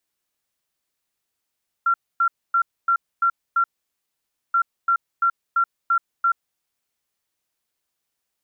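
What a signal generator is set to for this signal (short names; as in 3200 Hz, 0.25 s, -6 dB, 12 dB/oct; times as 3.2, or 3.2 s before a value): beep pattern sine 1370 Hz, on 0.08 s, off 0.26 s, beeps 6, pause 0.90 s, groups 2, -15 dBFS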